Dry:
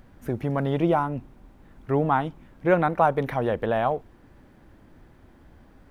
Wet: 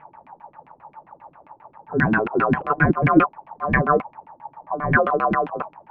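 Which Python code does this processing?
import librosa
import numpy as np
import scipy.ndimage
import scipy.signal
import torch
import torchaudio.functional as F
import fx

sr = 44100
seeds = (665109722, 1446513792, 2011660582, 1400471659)

y = np.flip(x).copy()
y = fx.low_shelf(y, sr, hz=110.0, db=6.5)
y = y * np.sin(2.0 * np.pi * 890.0 * np.arange(len(y)) / sr)
y = fx.filter_lfo_lowpass(y, sr, shape='saw_down', hz=7.5, low_hz=230.0, high_hz=2500.0, q=4.8)
y = fx.peak_eq(y, sr, hz=160.0, db=12.0, octaves=0.9)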